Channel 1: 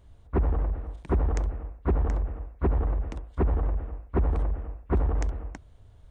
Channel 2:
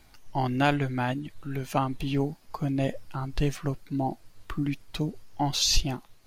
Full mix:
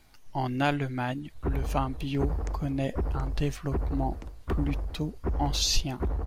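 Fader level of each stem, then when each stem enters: −5.5, −2.5 decibels; 1.10, 0.00 seconds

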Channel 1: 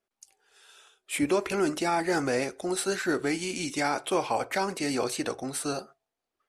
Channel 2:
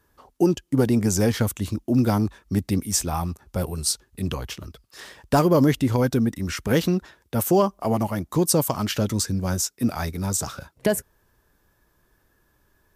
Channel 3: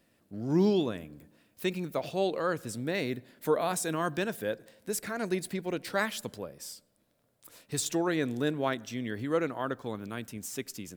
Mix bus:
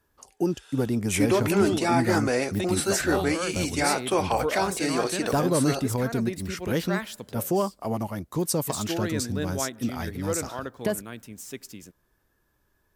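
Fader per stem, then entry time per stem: +2.5, −6.0, −1.5 decibels; 0.00, 0.00, 0.95 seconds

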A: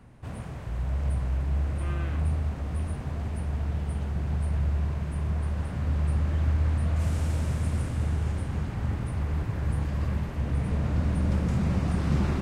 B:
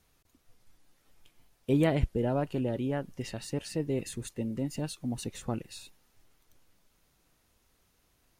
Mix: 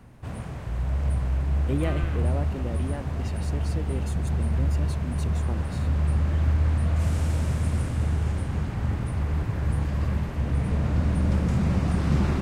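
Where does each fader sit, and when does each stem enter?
+2.5, −3.5 decibels; 0.00, 0.00 seconds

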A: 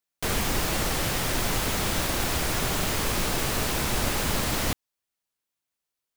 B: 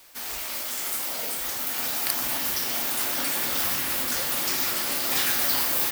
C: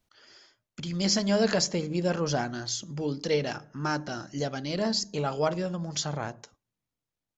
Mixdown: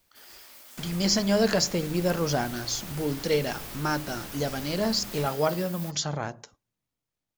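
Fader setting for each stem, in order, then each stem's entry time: −16.0, −18.0, +1.5 decibels; 0.55, 0.00, 0.00 seconds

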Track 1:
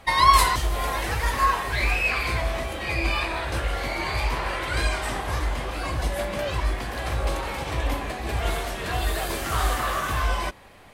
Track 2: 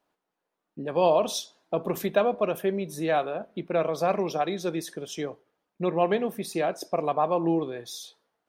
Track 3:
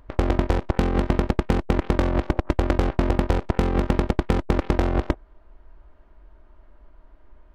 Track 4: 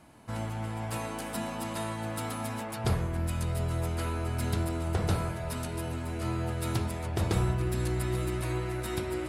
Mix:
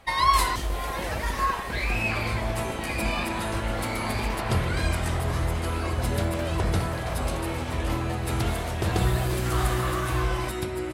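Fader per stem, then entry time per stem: −4.5, −17.0, −16.5, +2.5 decibels; 0.00, 0.00, 0.20, 1.65 seconds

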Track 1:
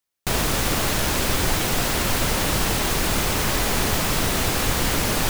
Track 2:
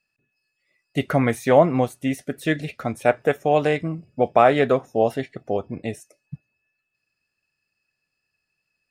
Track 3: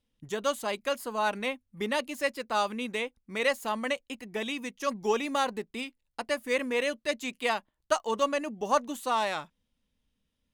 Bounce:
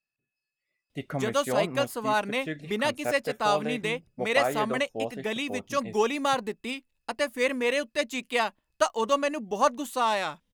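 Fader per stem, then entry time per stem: muted, −12.5 dB, +2.5 dB; muted, 0.00 s, 0.90 s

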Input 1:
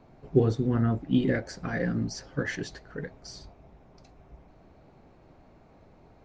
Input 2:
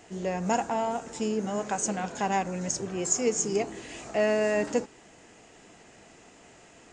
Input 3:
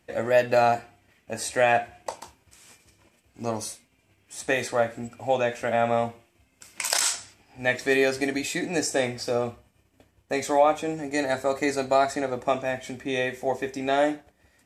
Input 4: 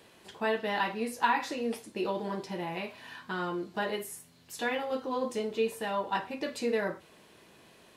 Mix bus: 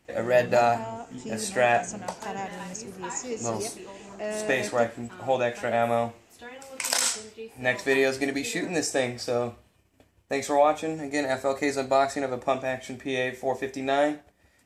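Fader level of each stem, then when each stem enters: −17.5, −7.5, −1.0, −11.5 decibels; 0.00, 0.05, 0.00, 1.80 seconds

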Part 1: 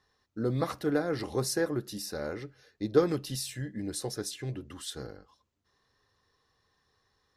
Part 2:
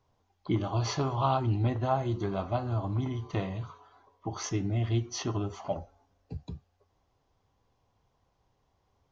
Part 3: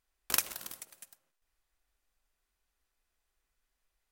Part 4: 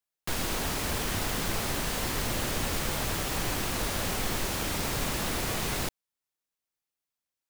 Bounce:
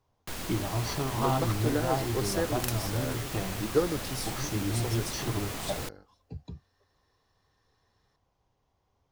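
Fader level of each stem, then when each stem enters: −2.0, −2.0, −6.5, −6.5 decibels; 0.80, 0.00, 2.30, 0.00 seconds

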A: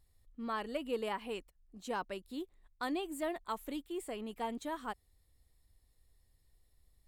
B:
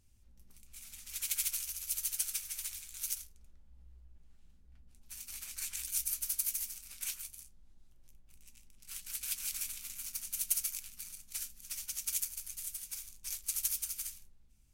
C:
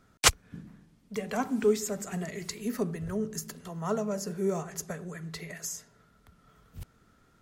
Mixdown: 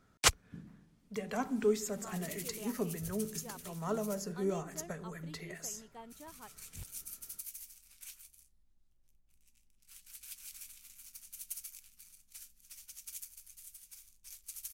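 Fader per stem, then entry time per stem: −12.5, −11.0, −5.0 decibels; 1.55, 1.00, 0.00 seconds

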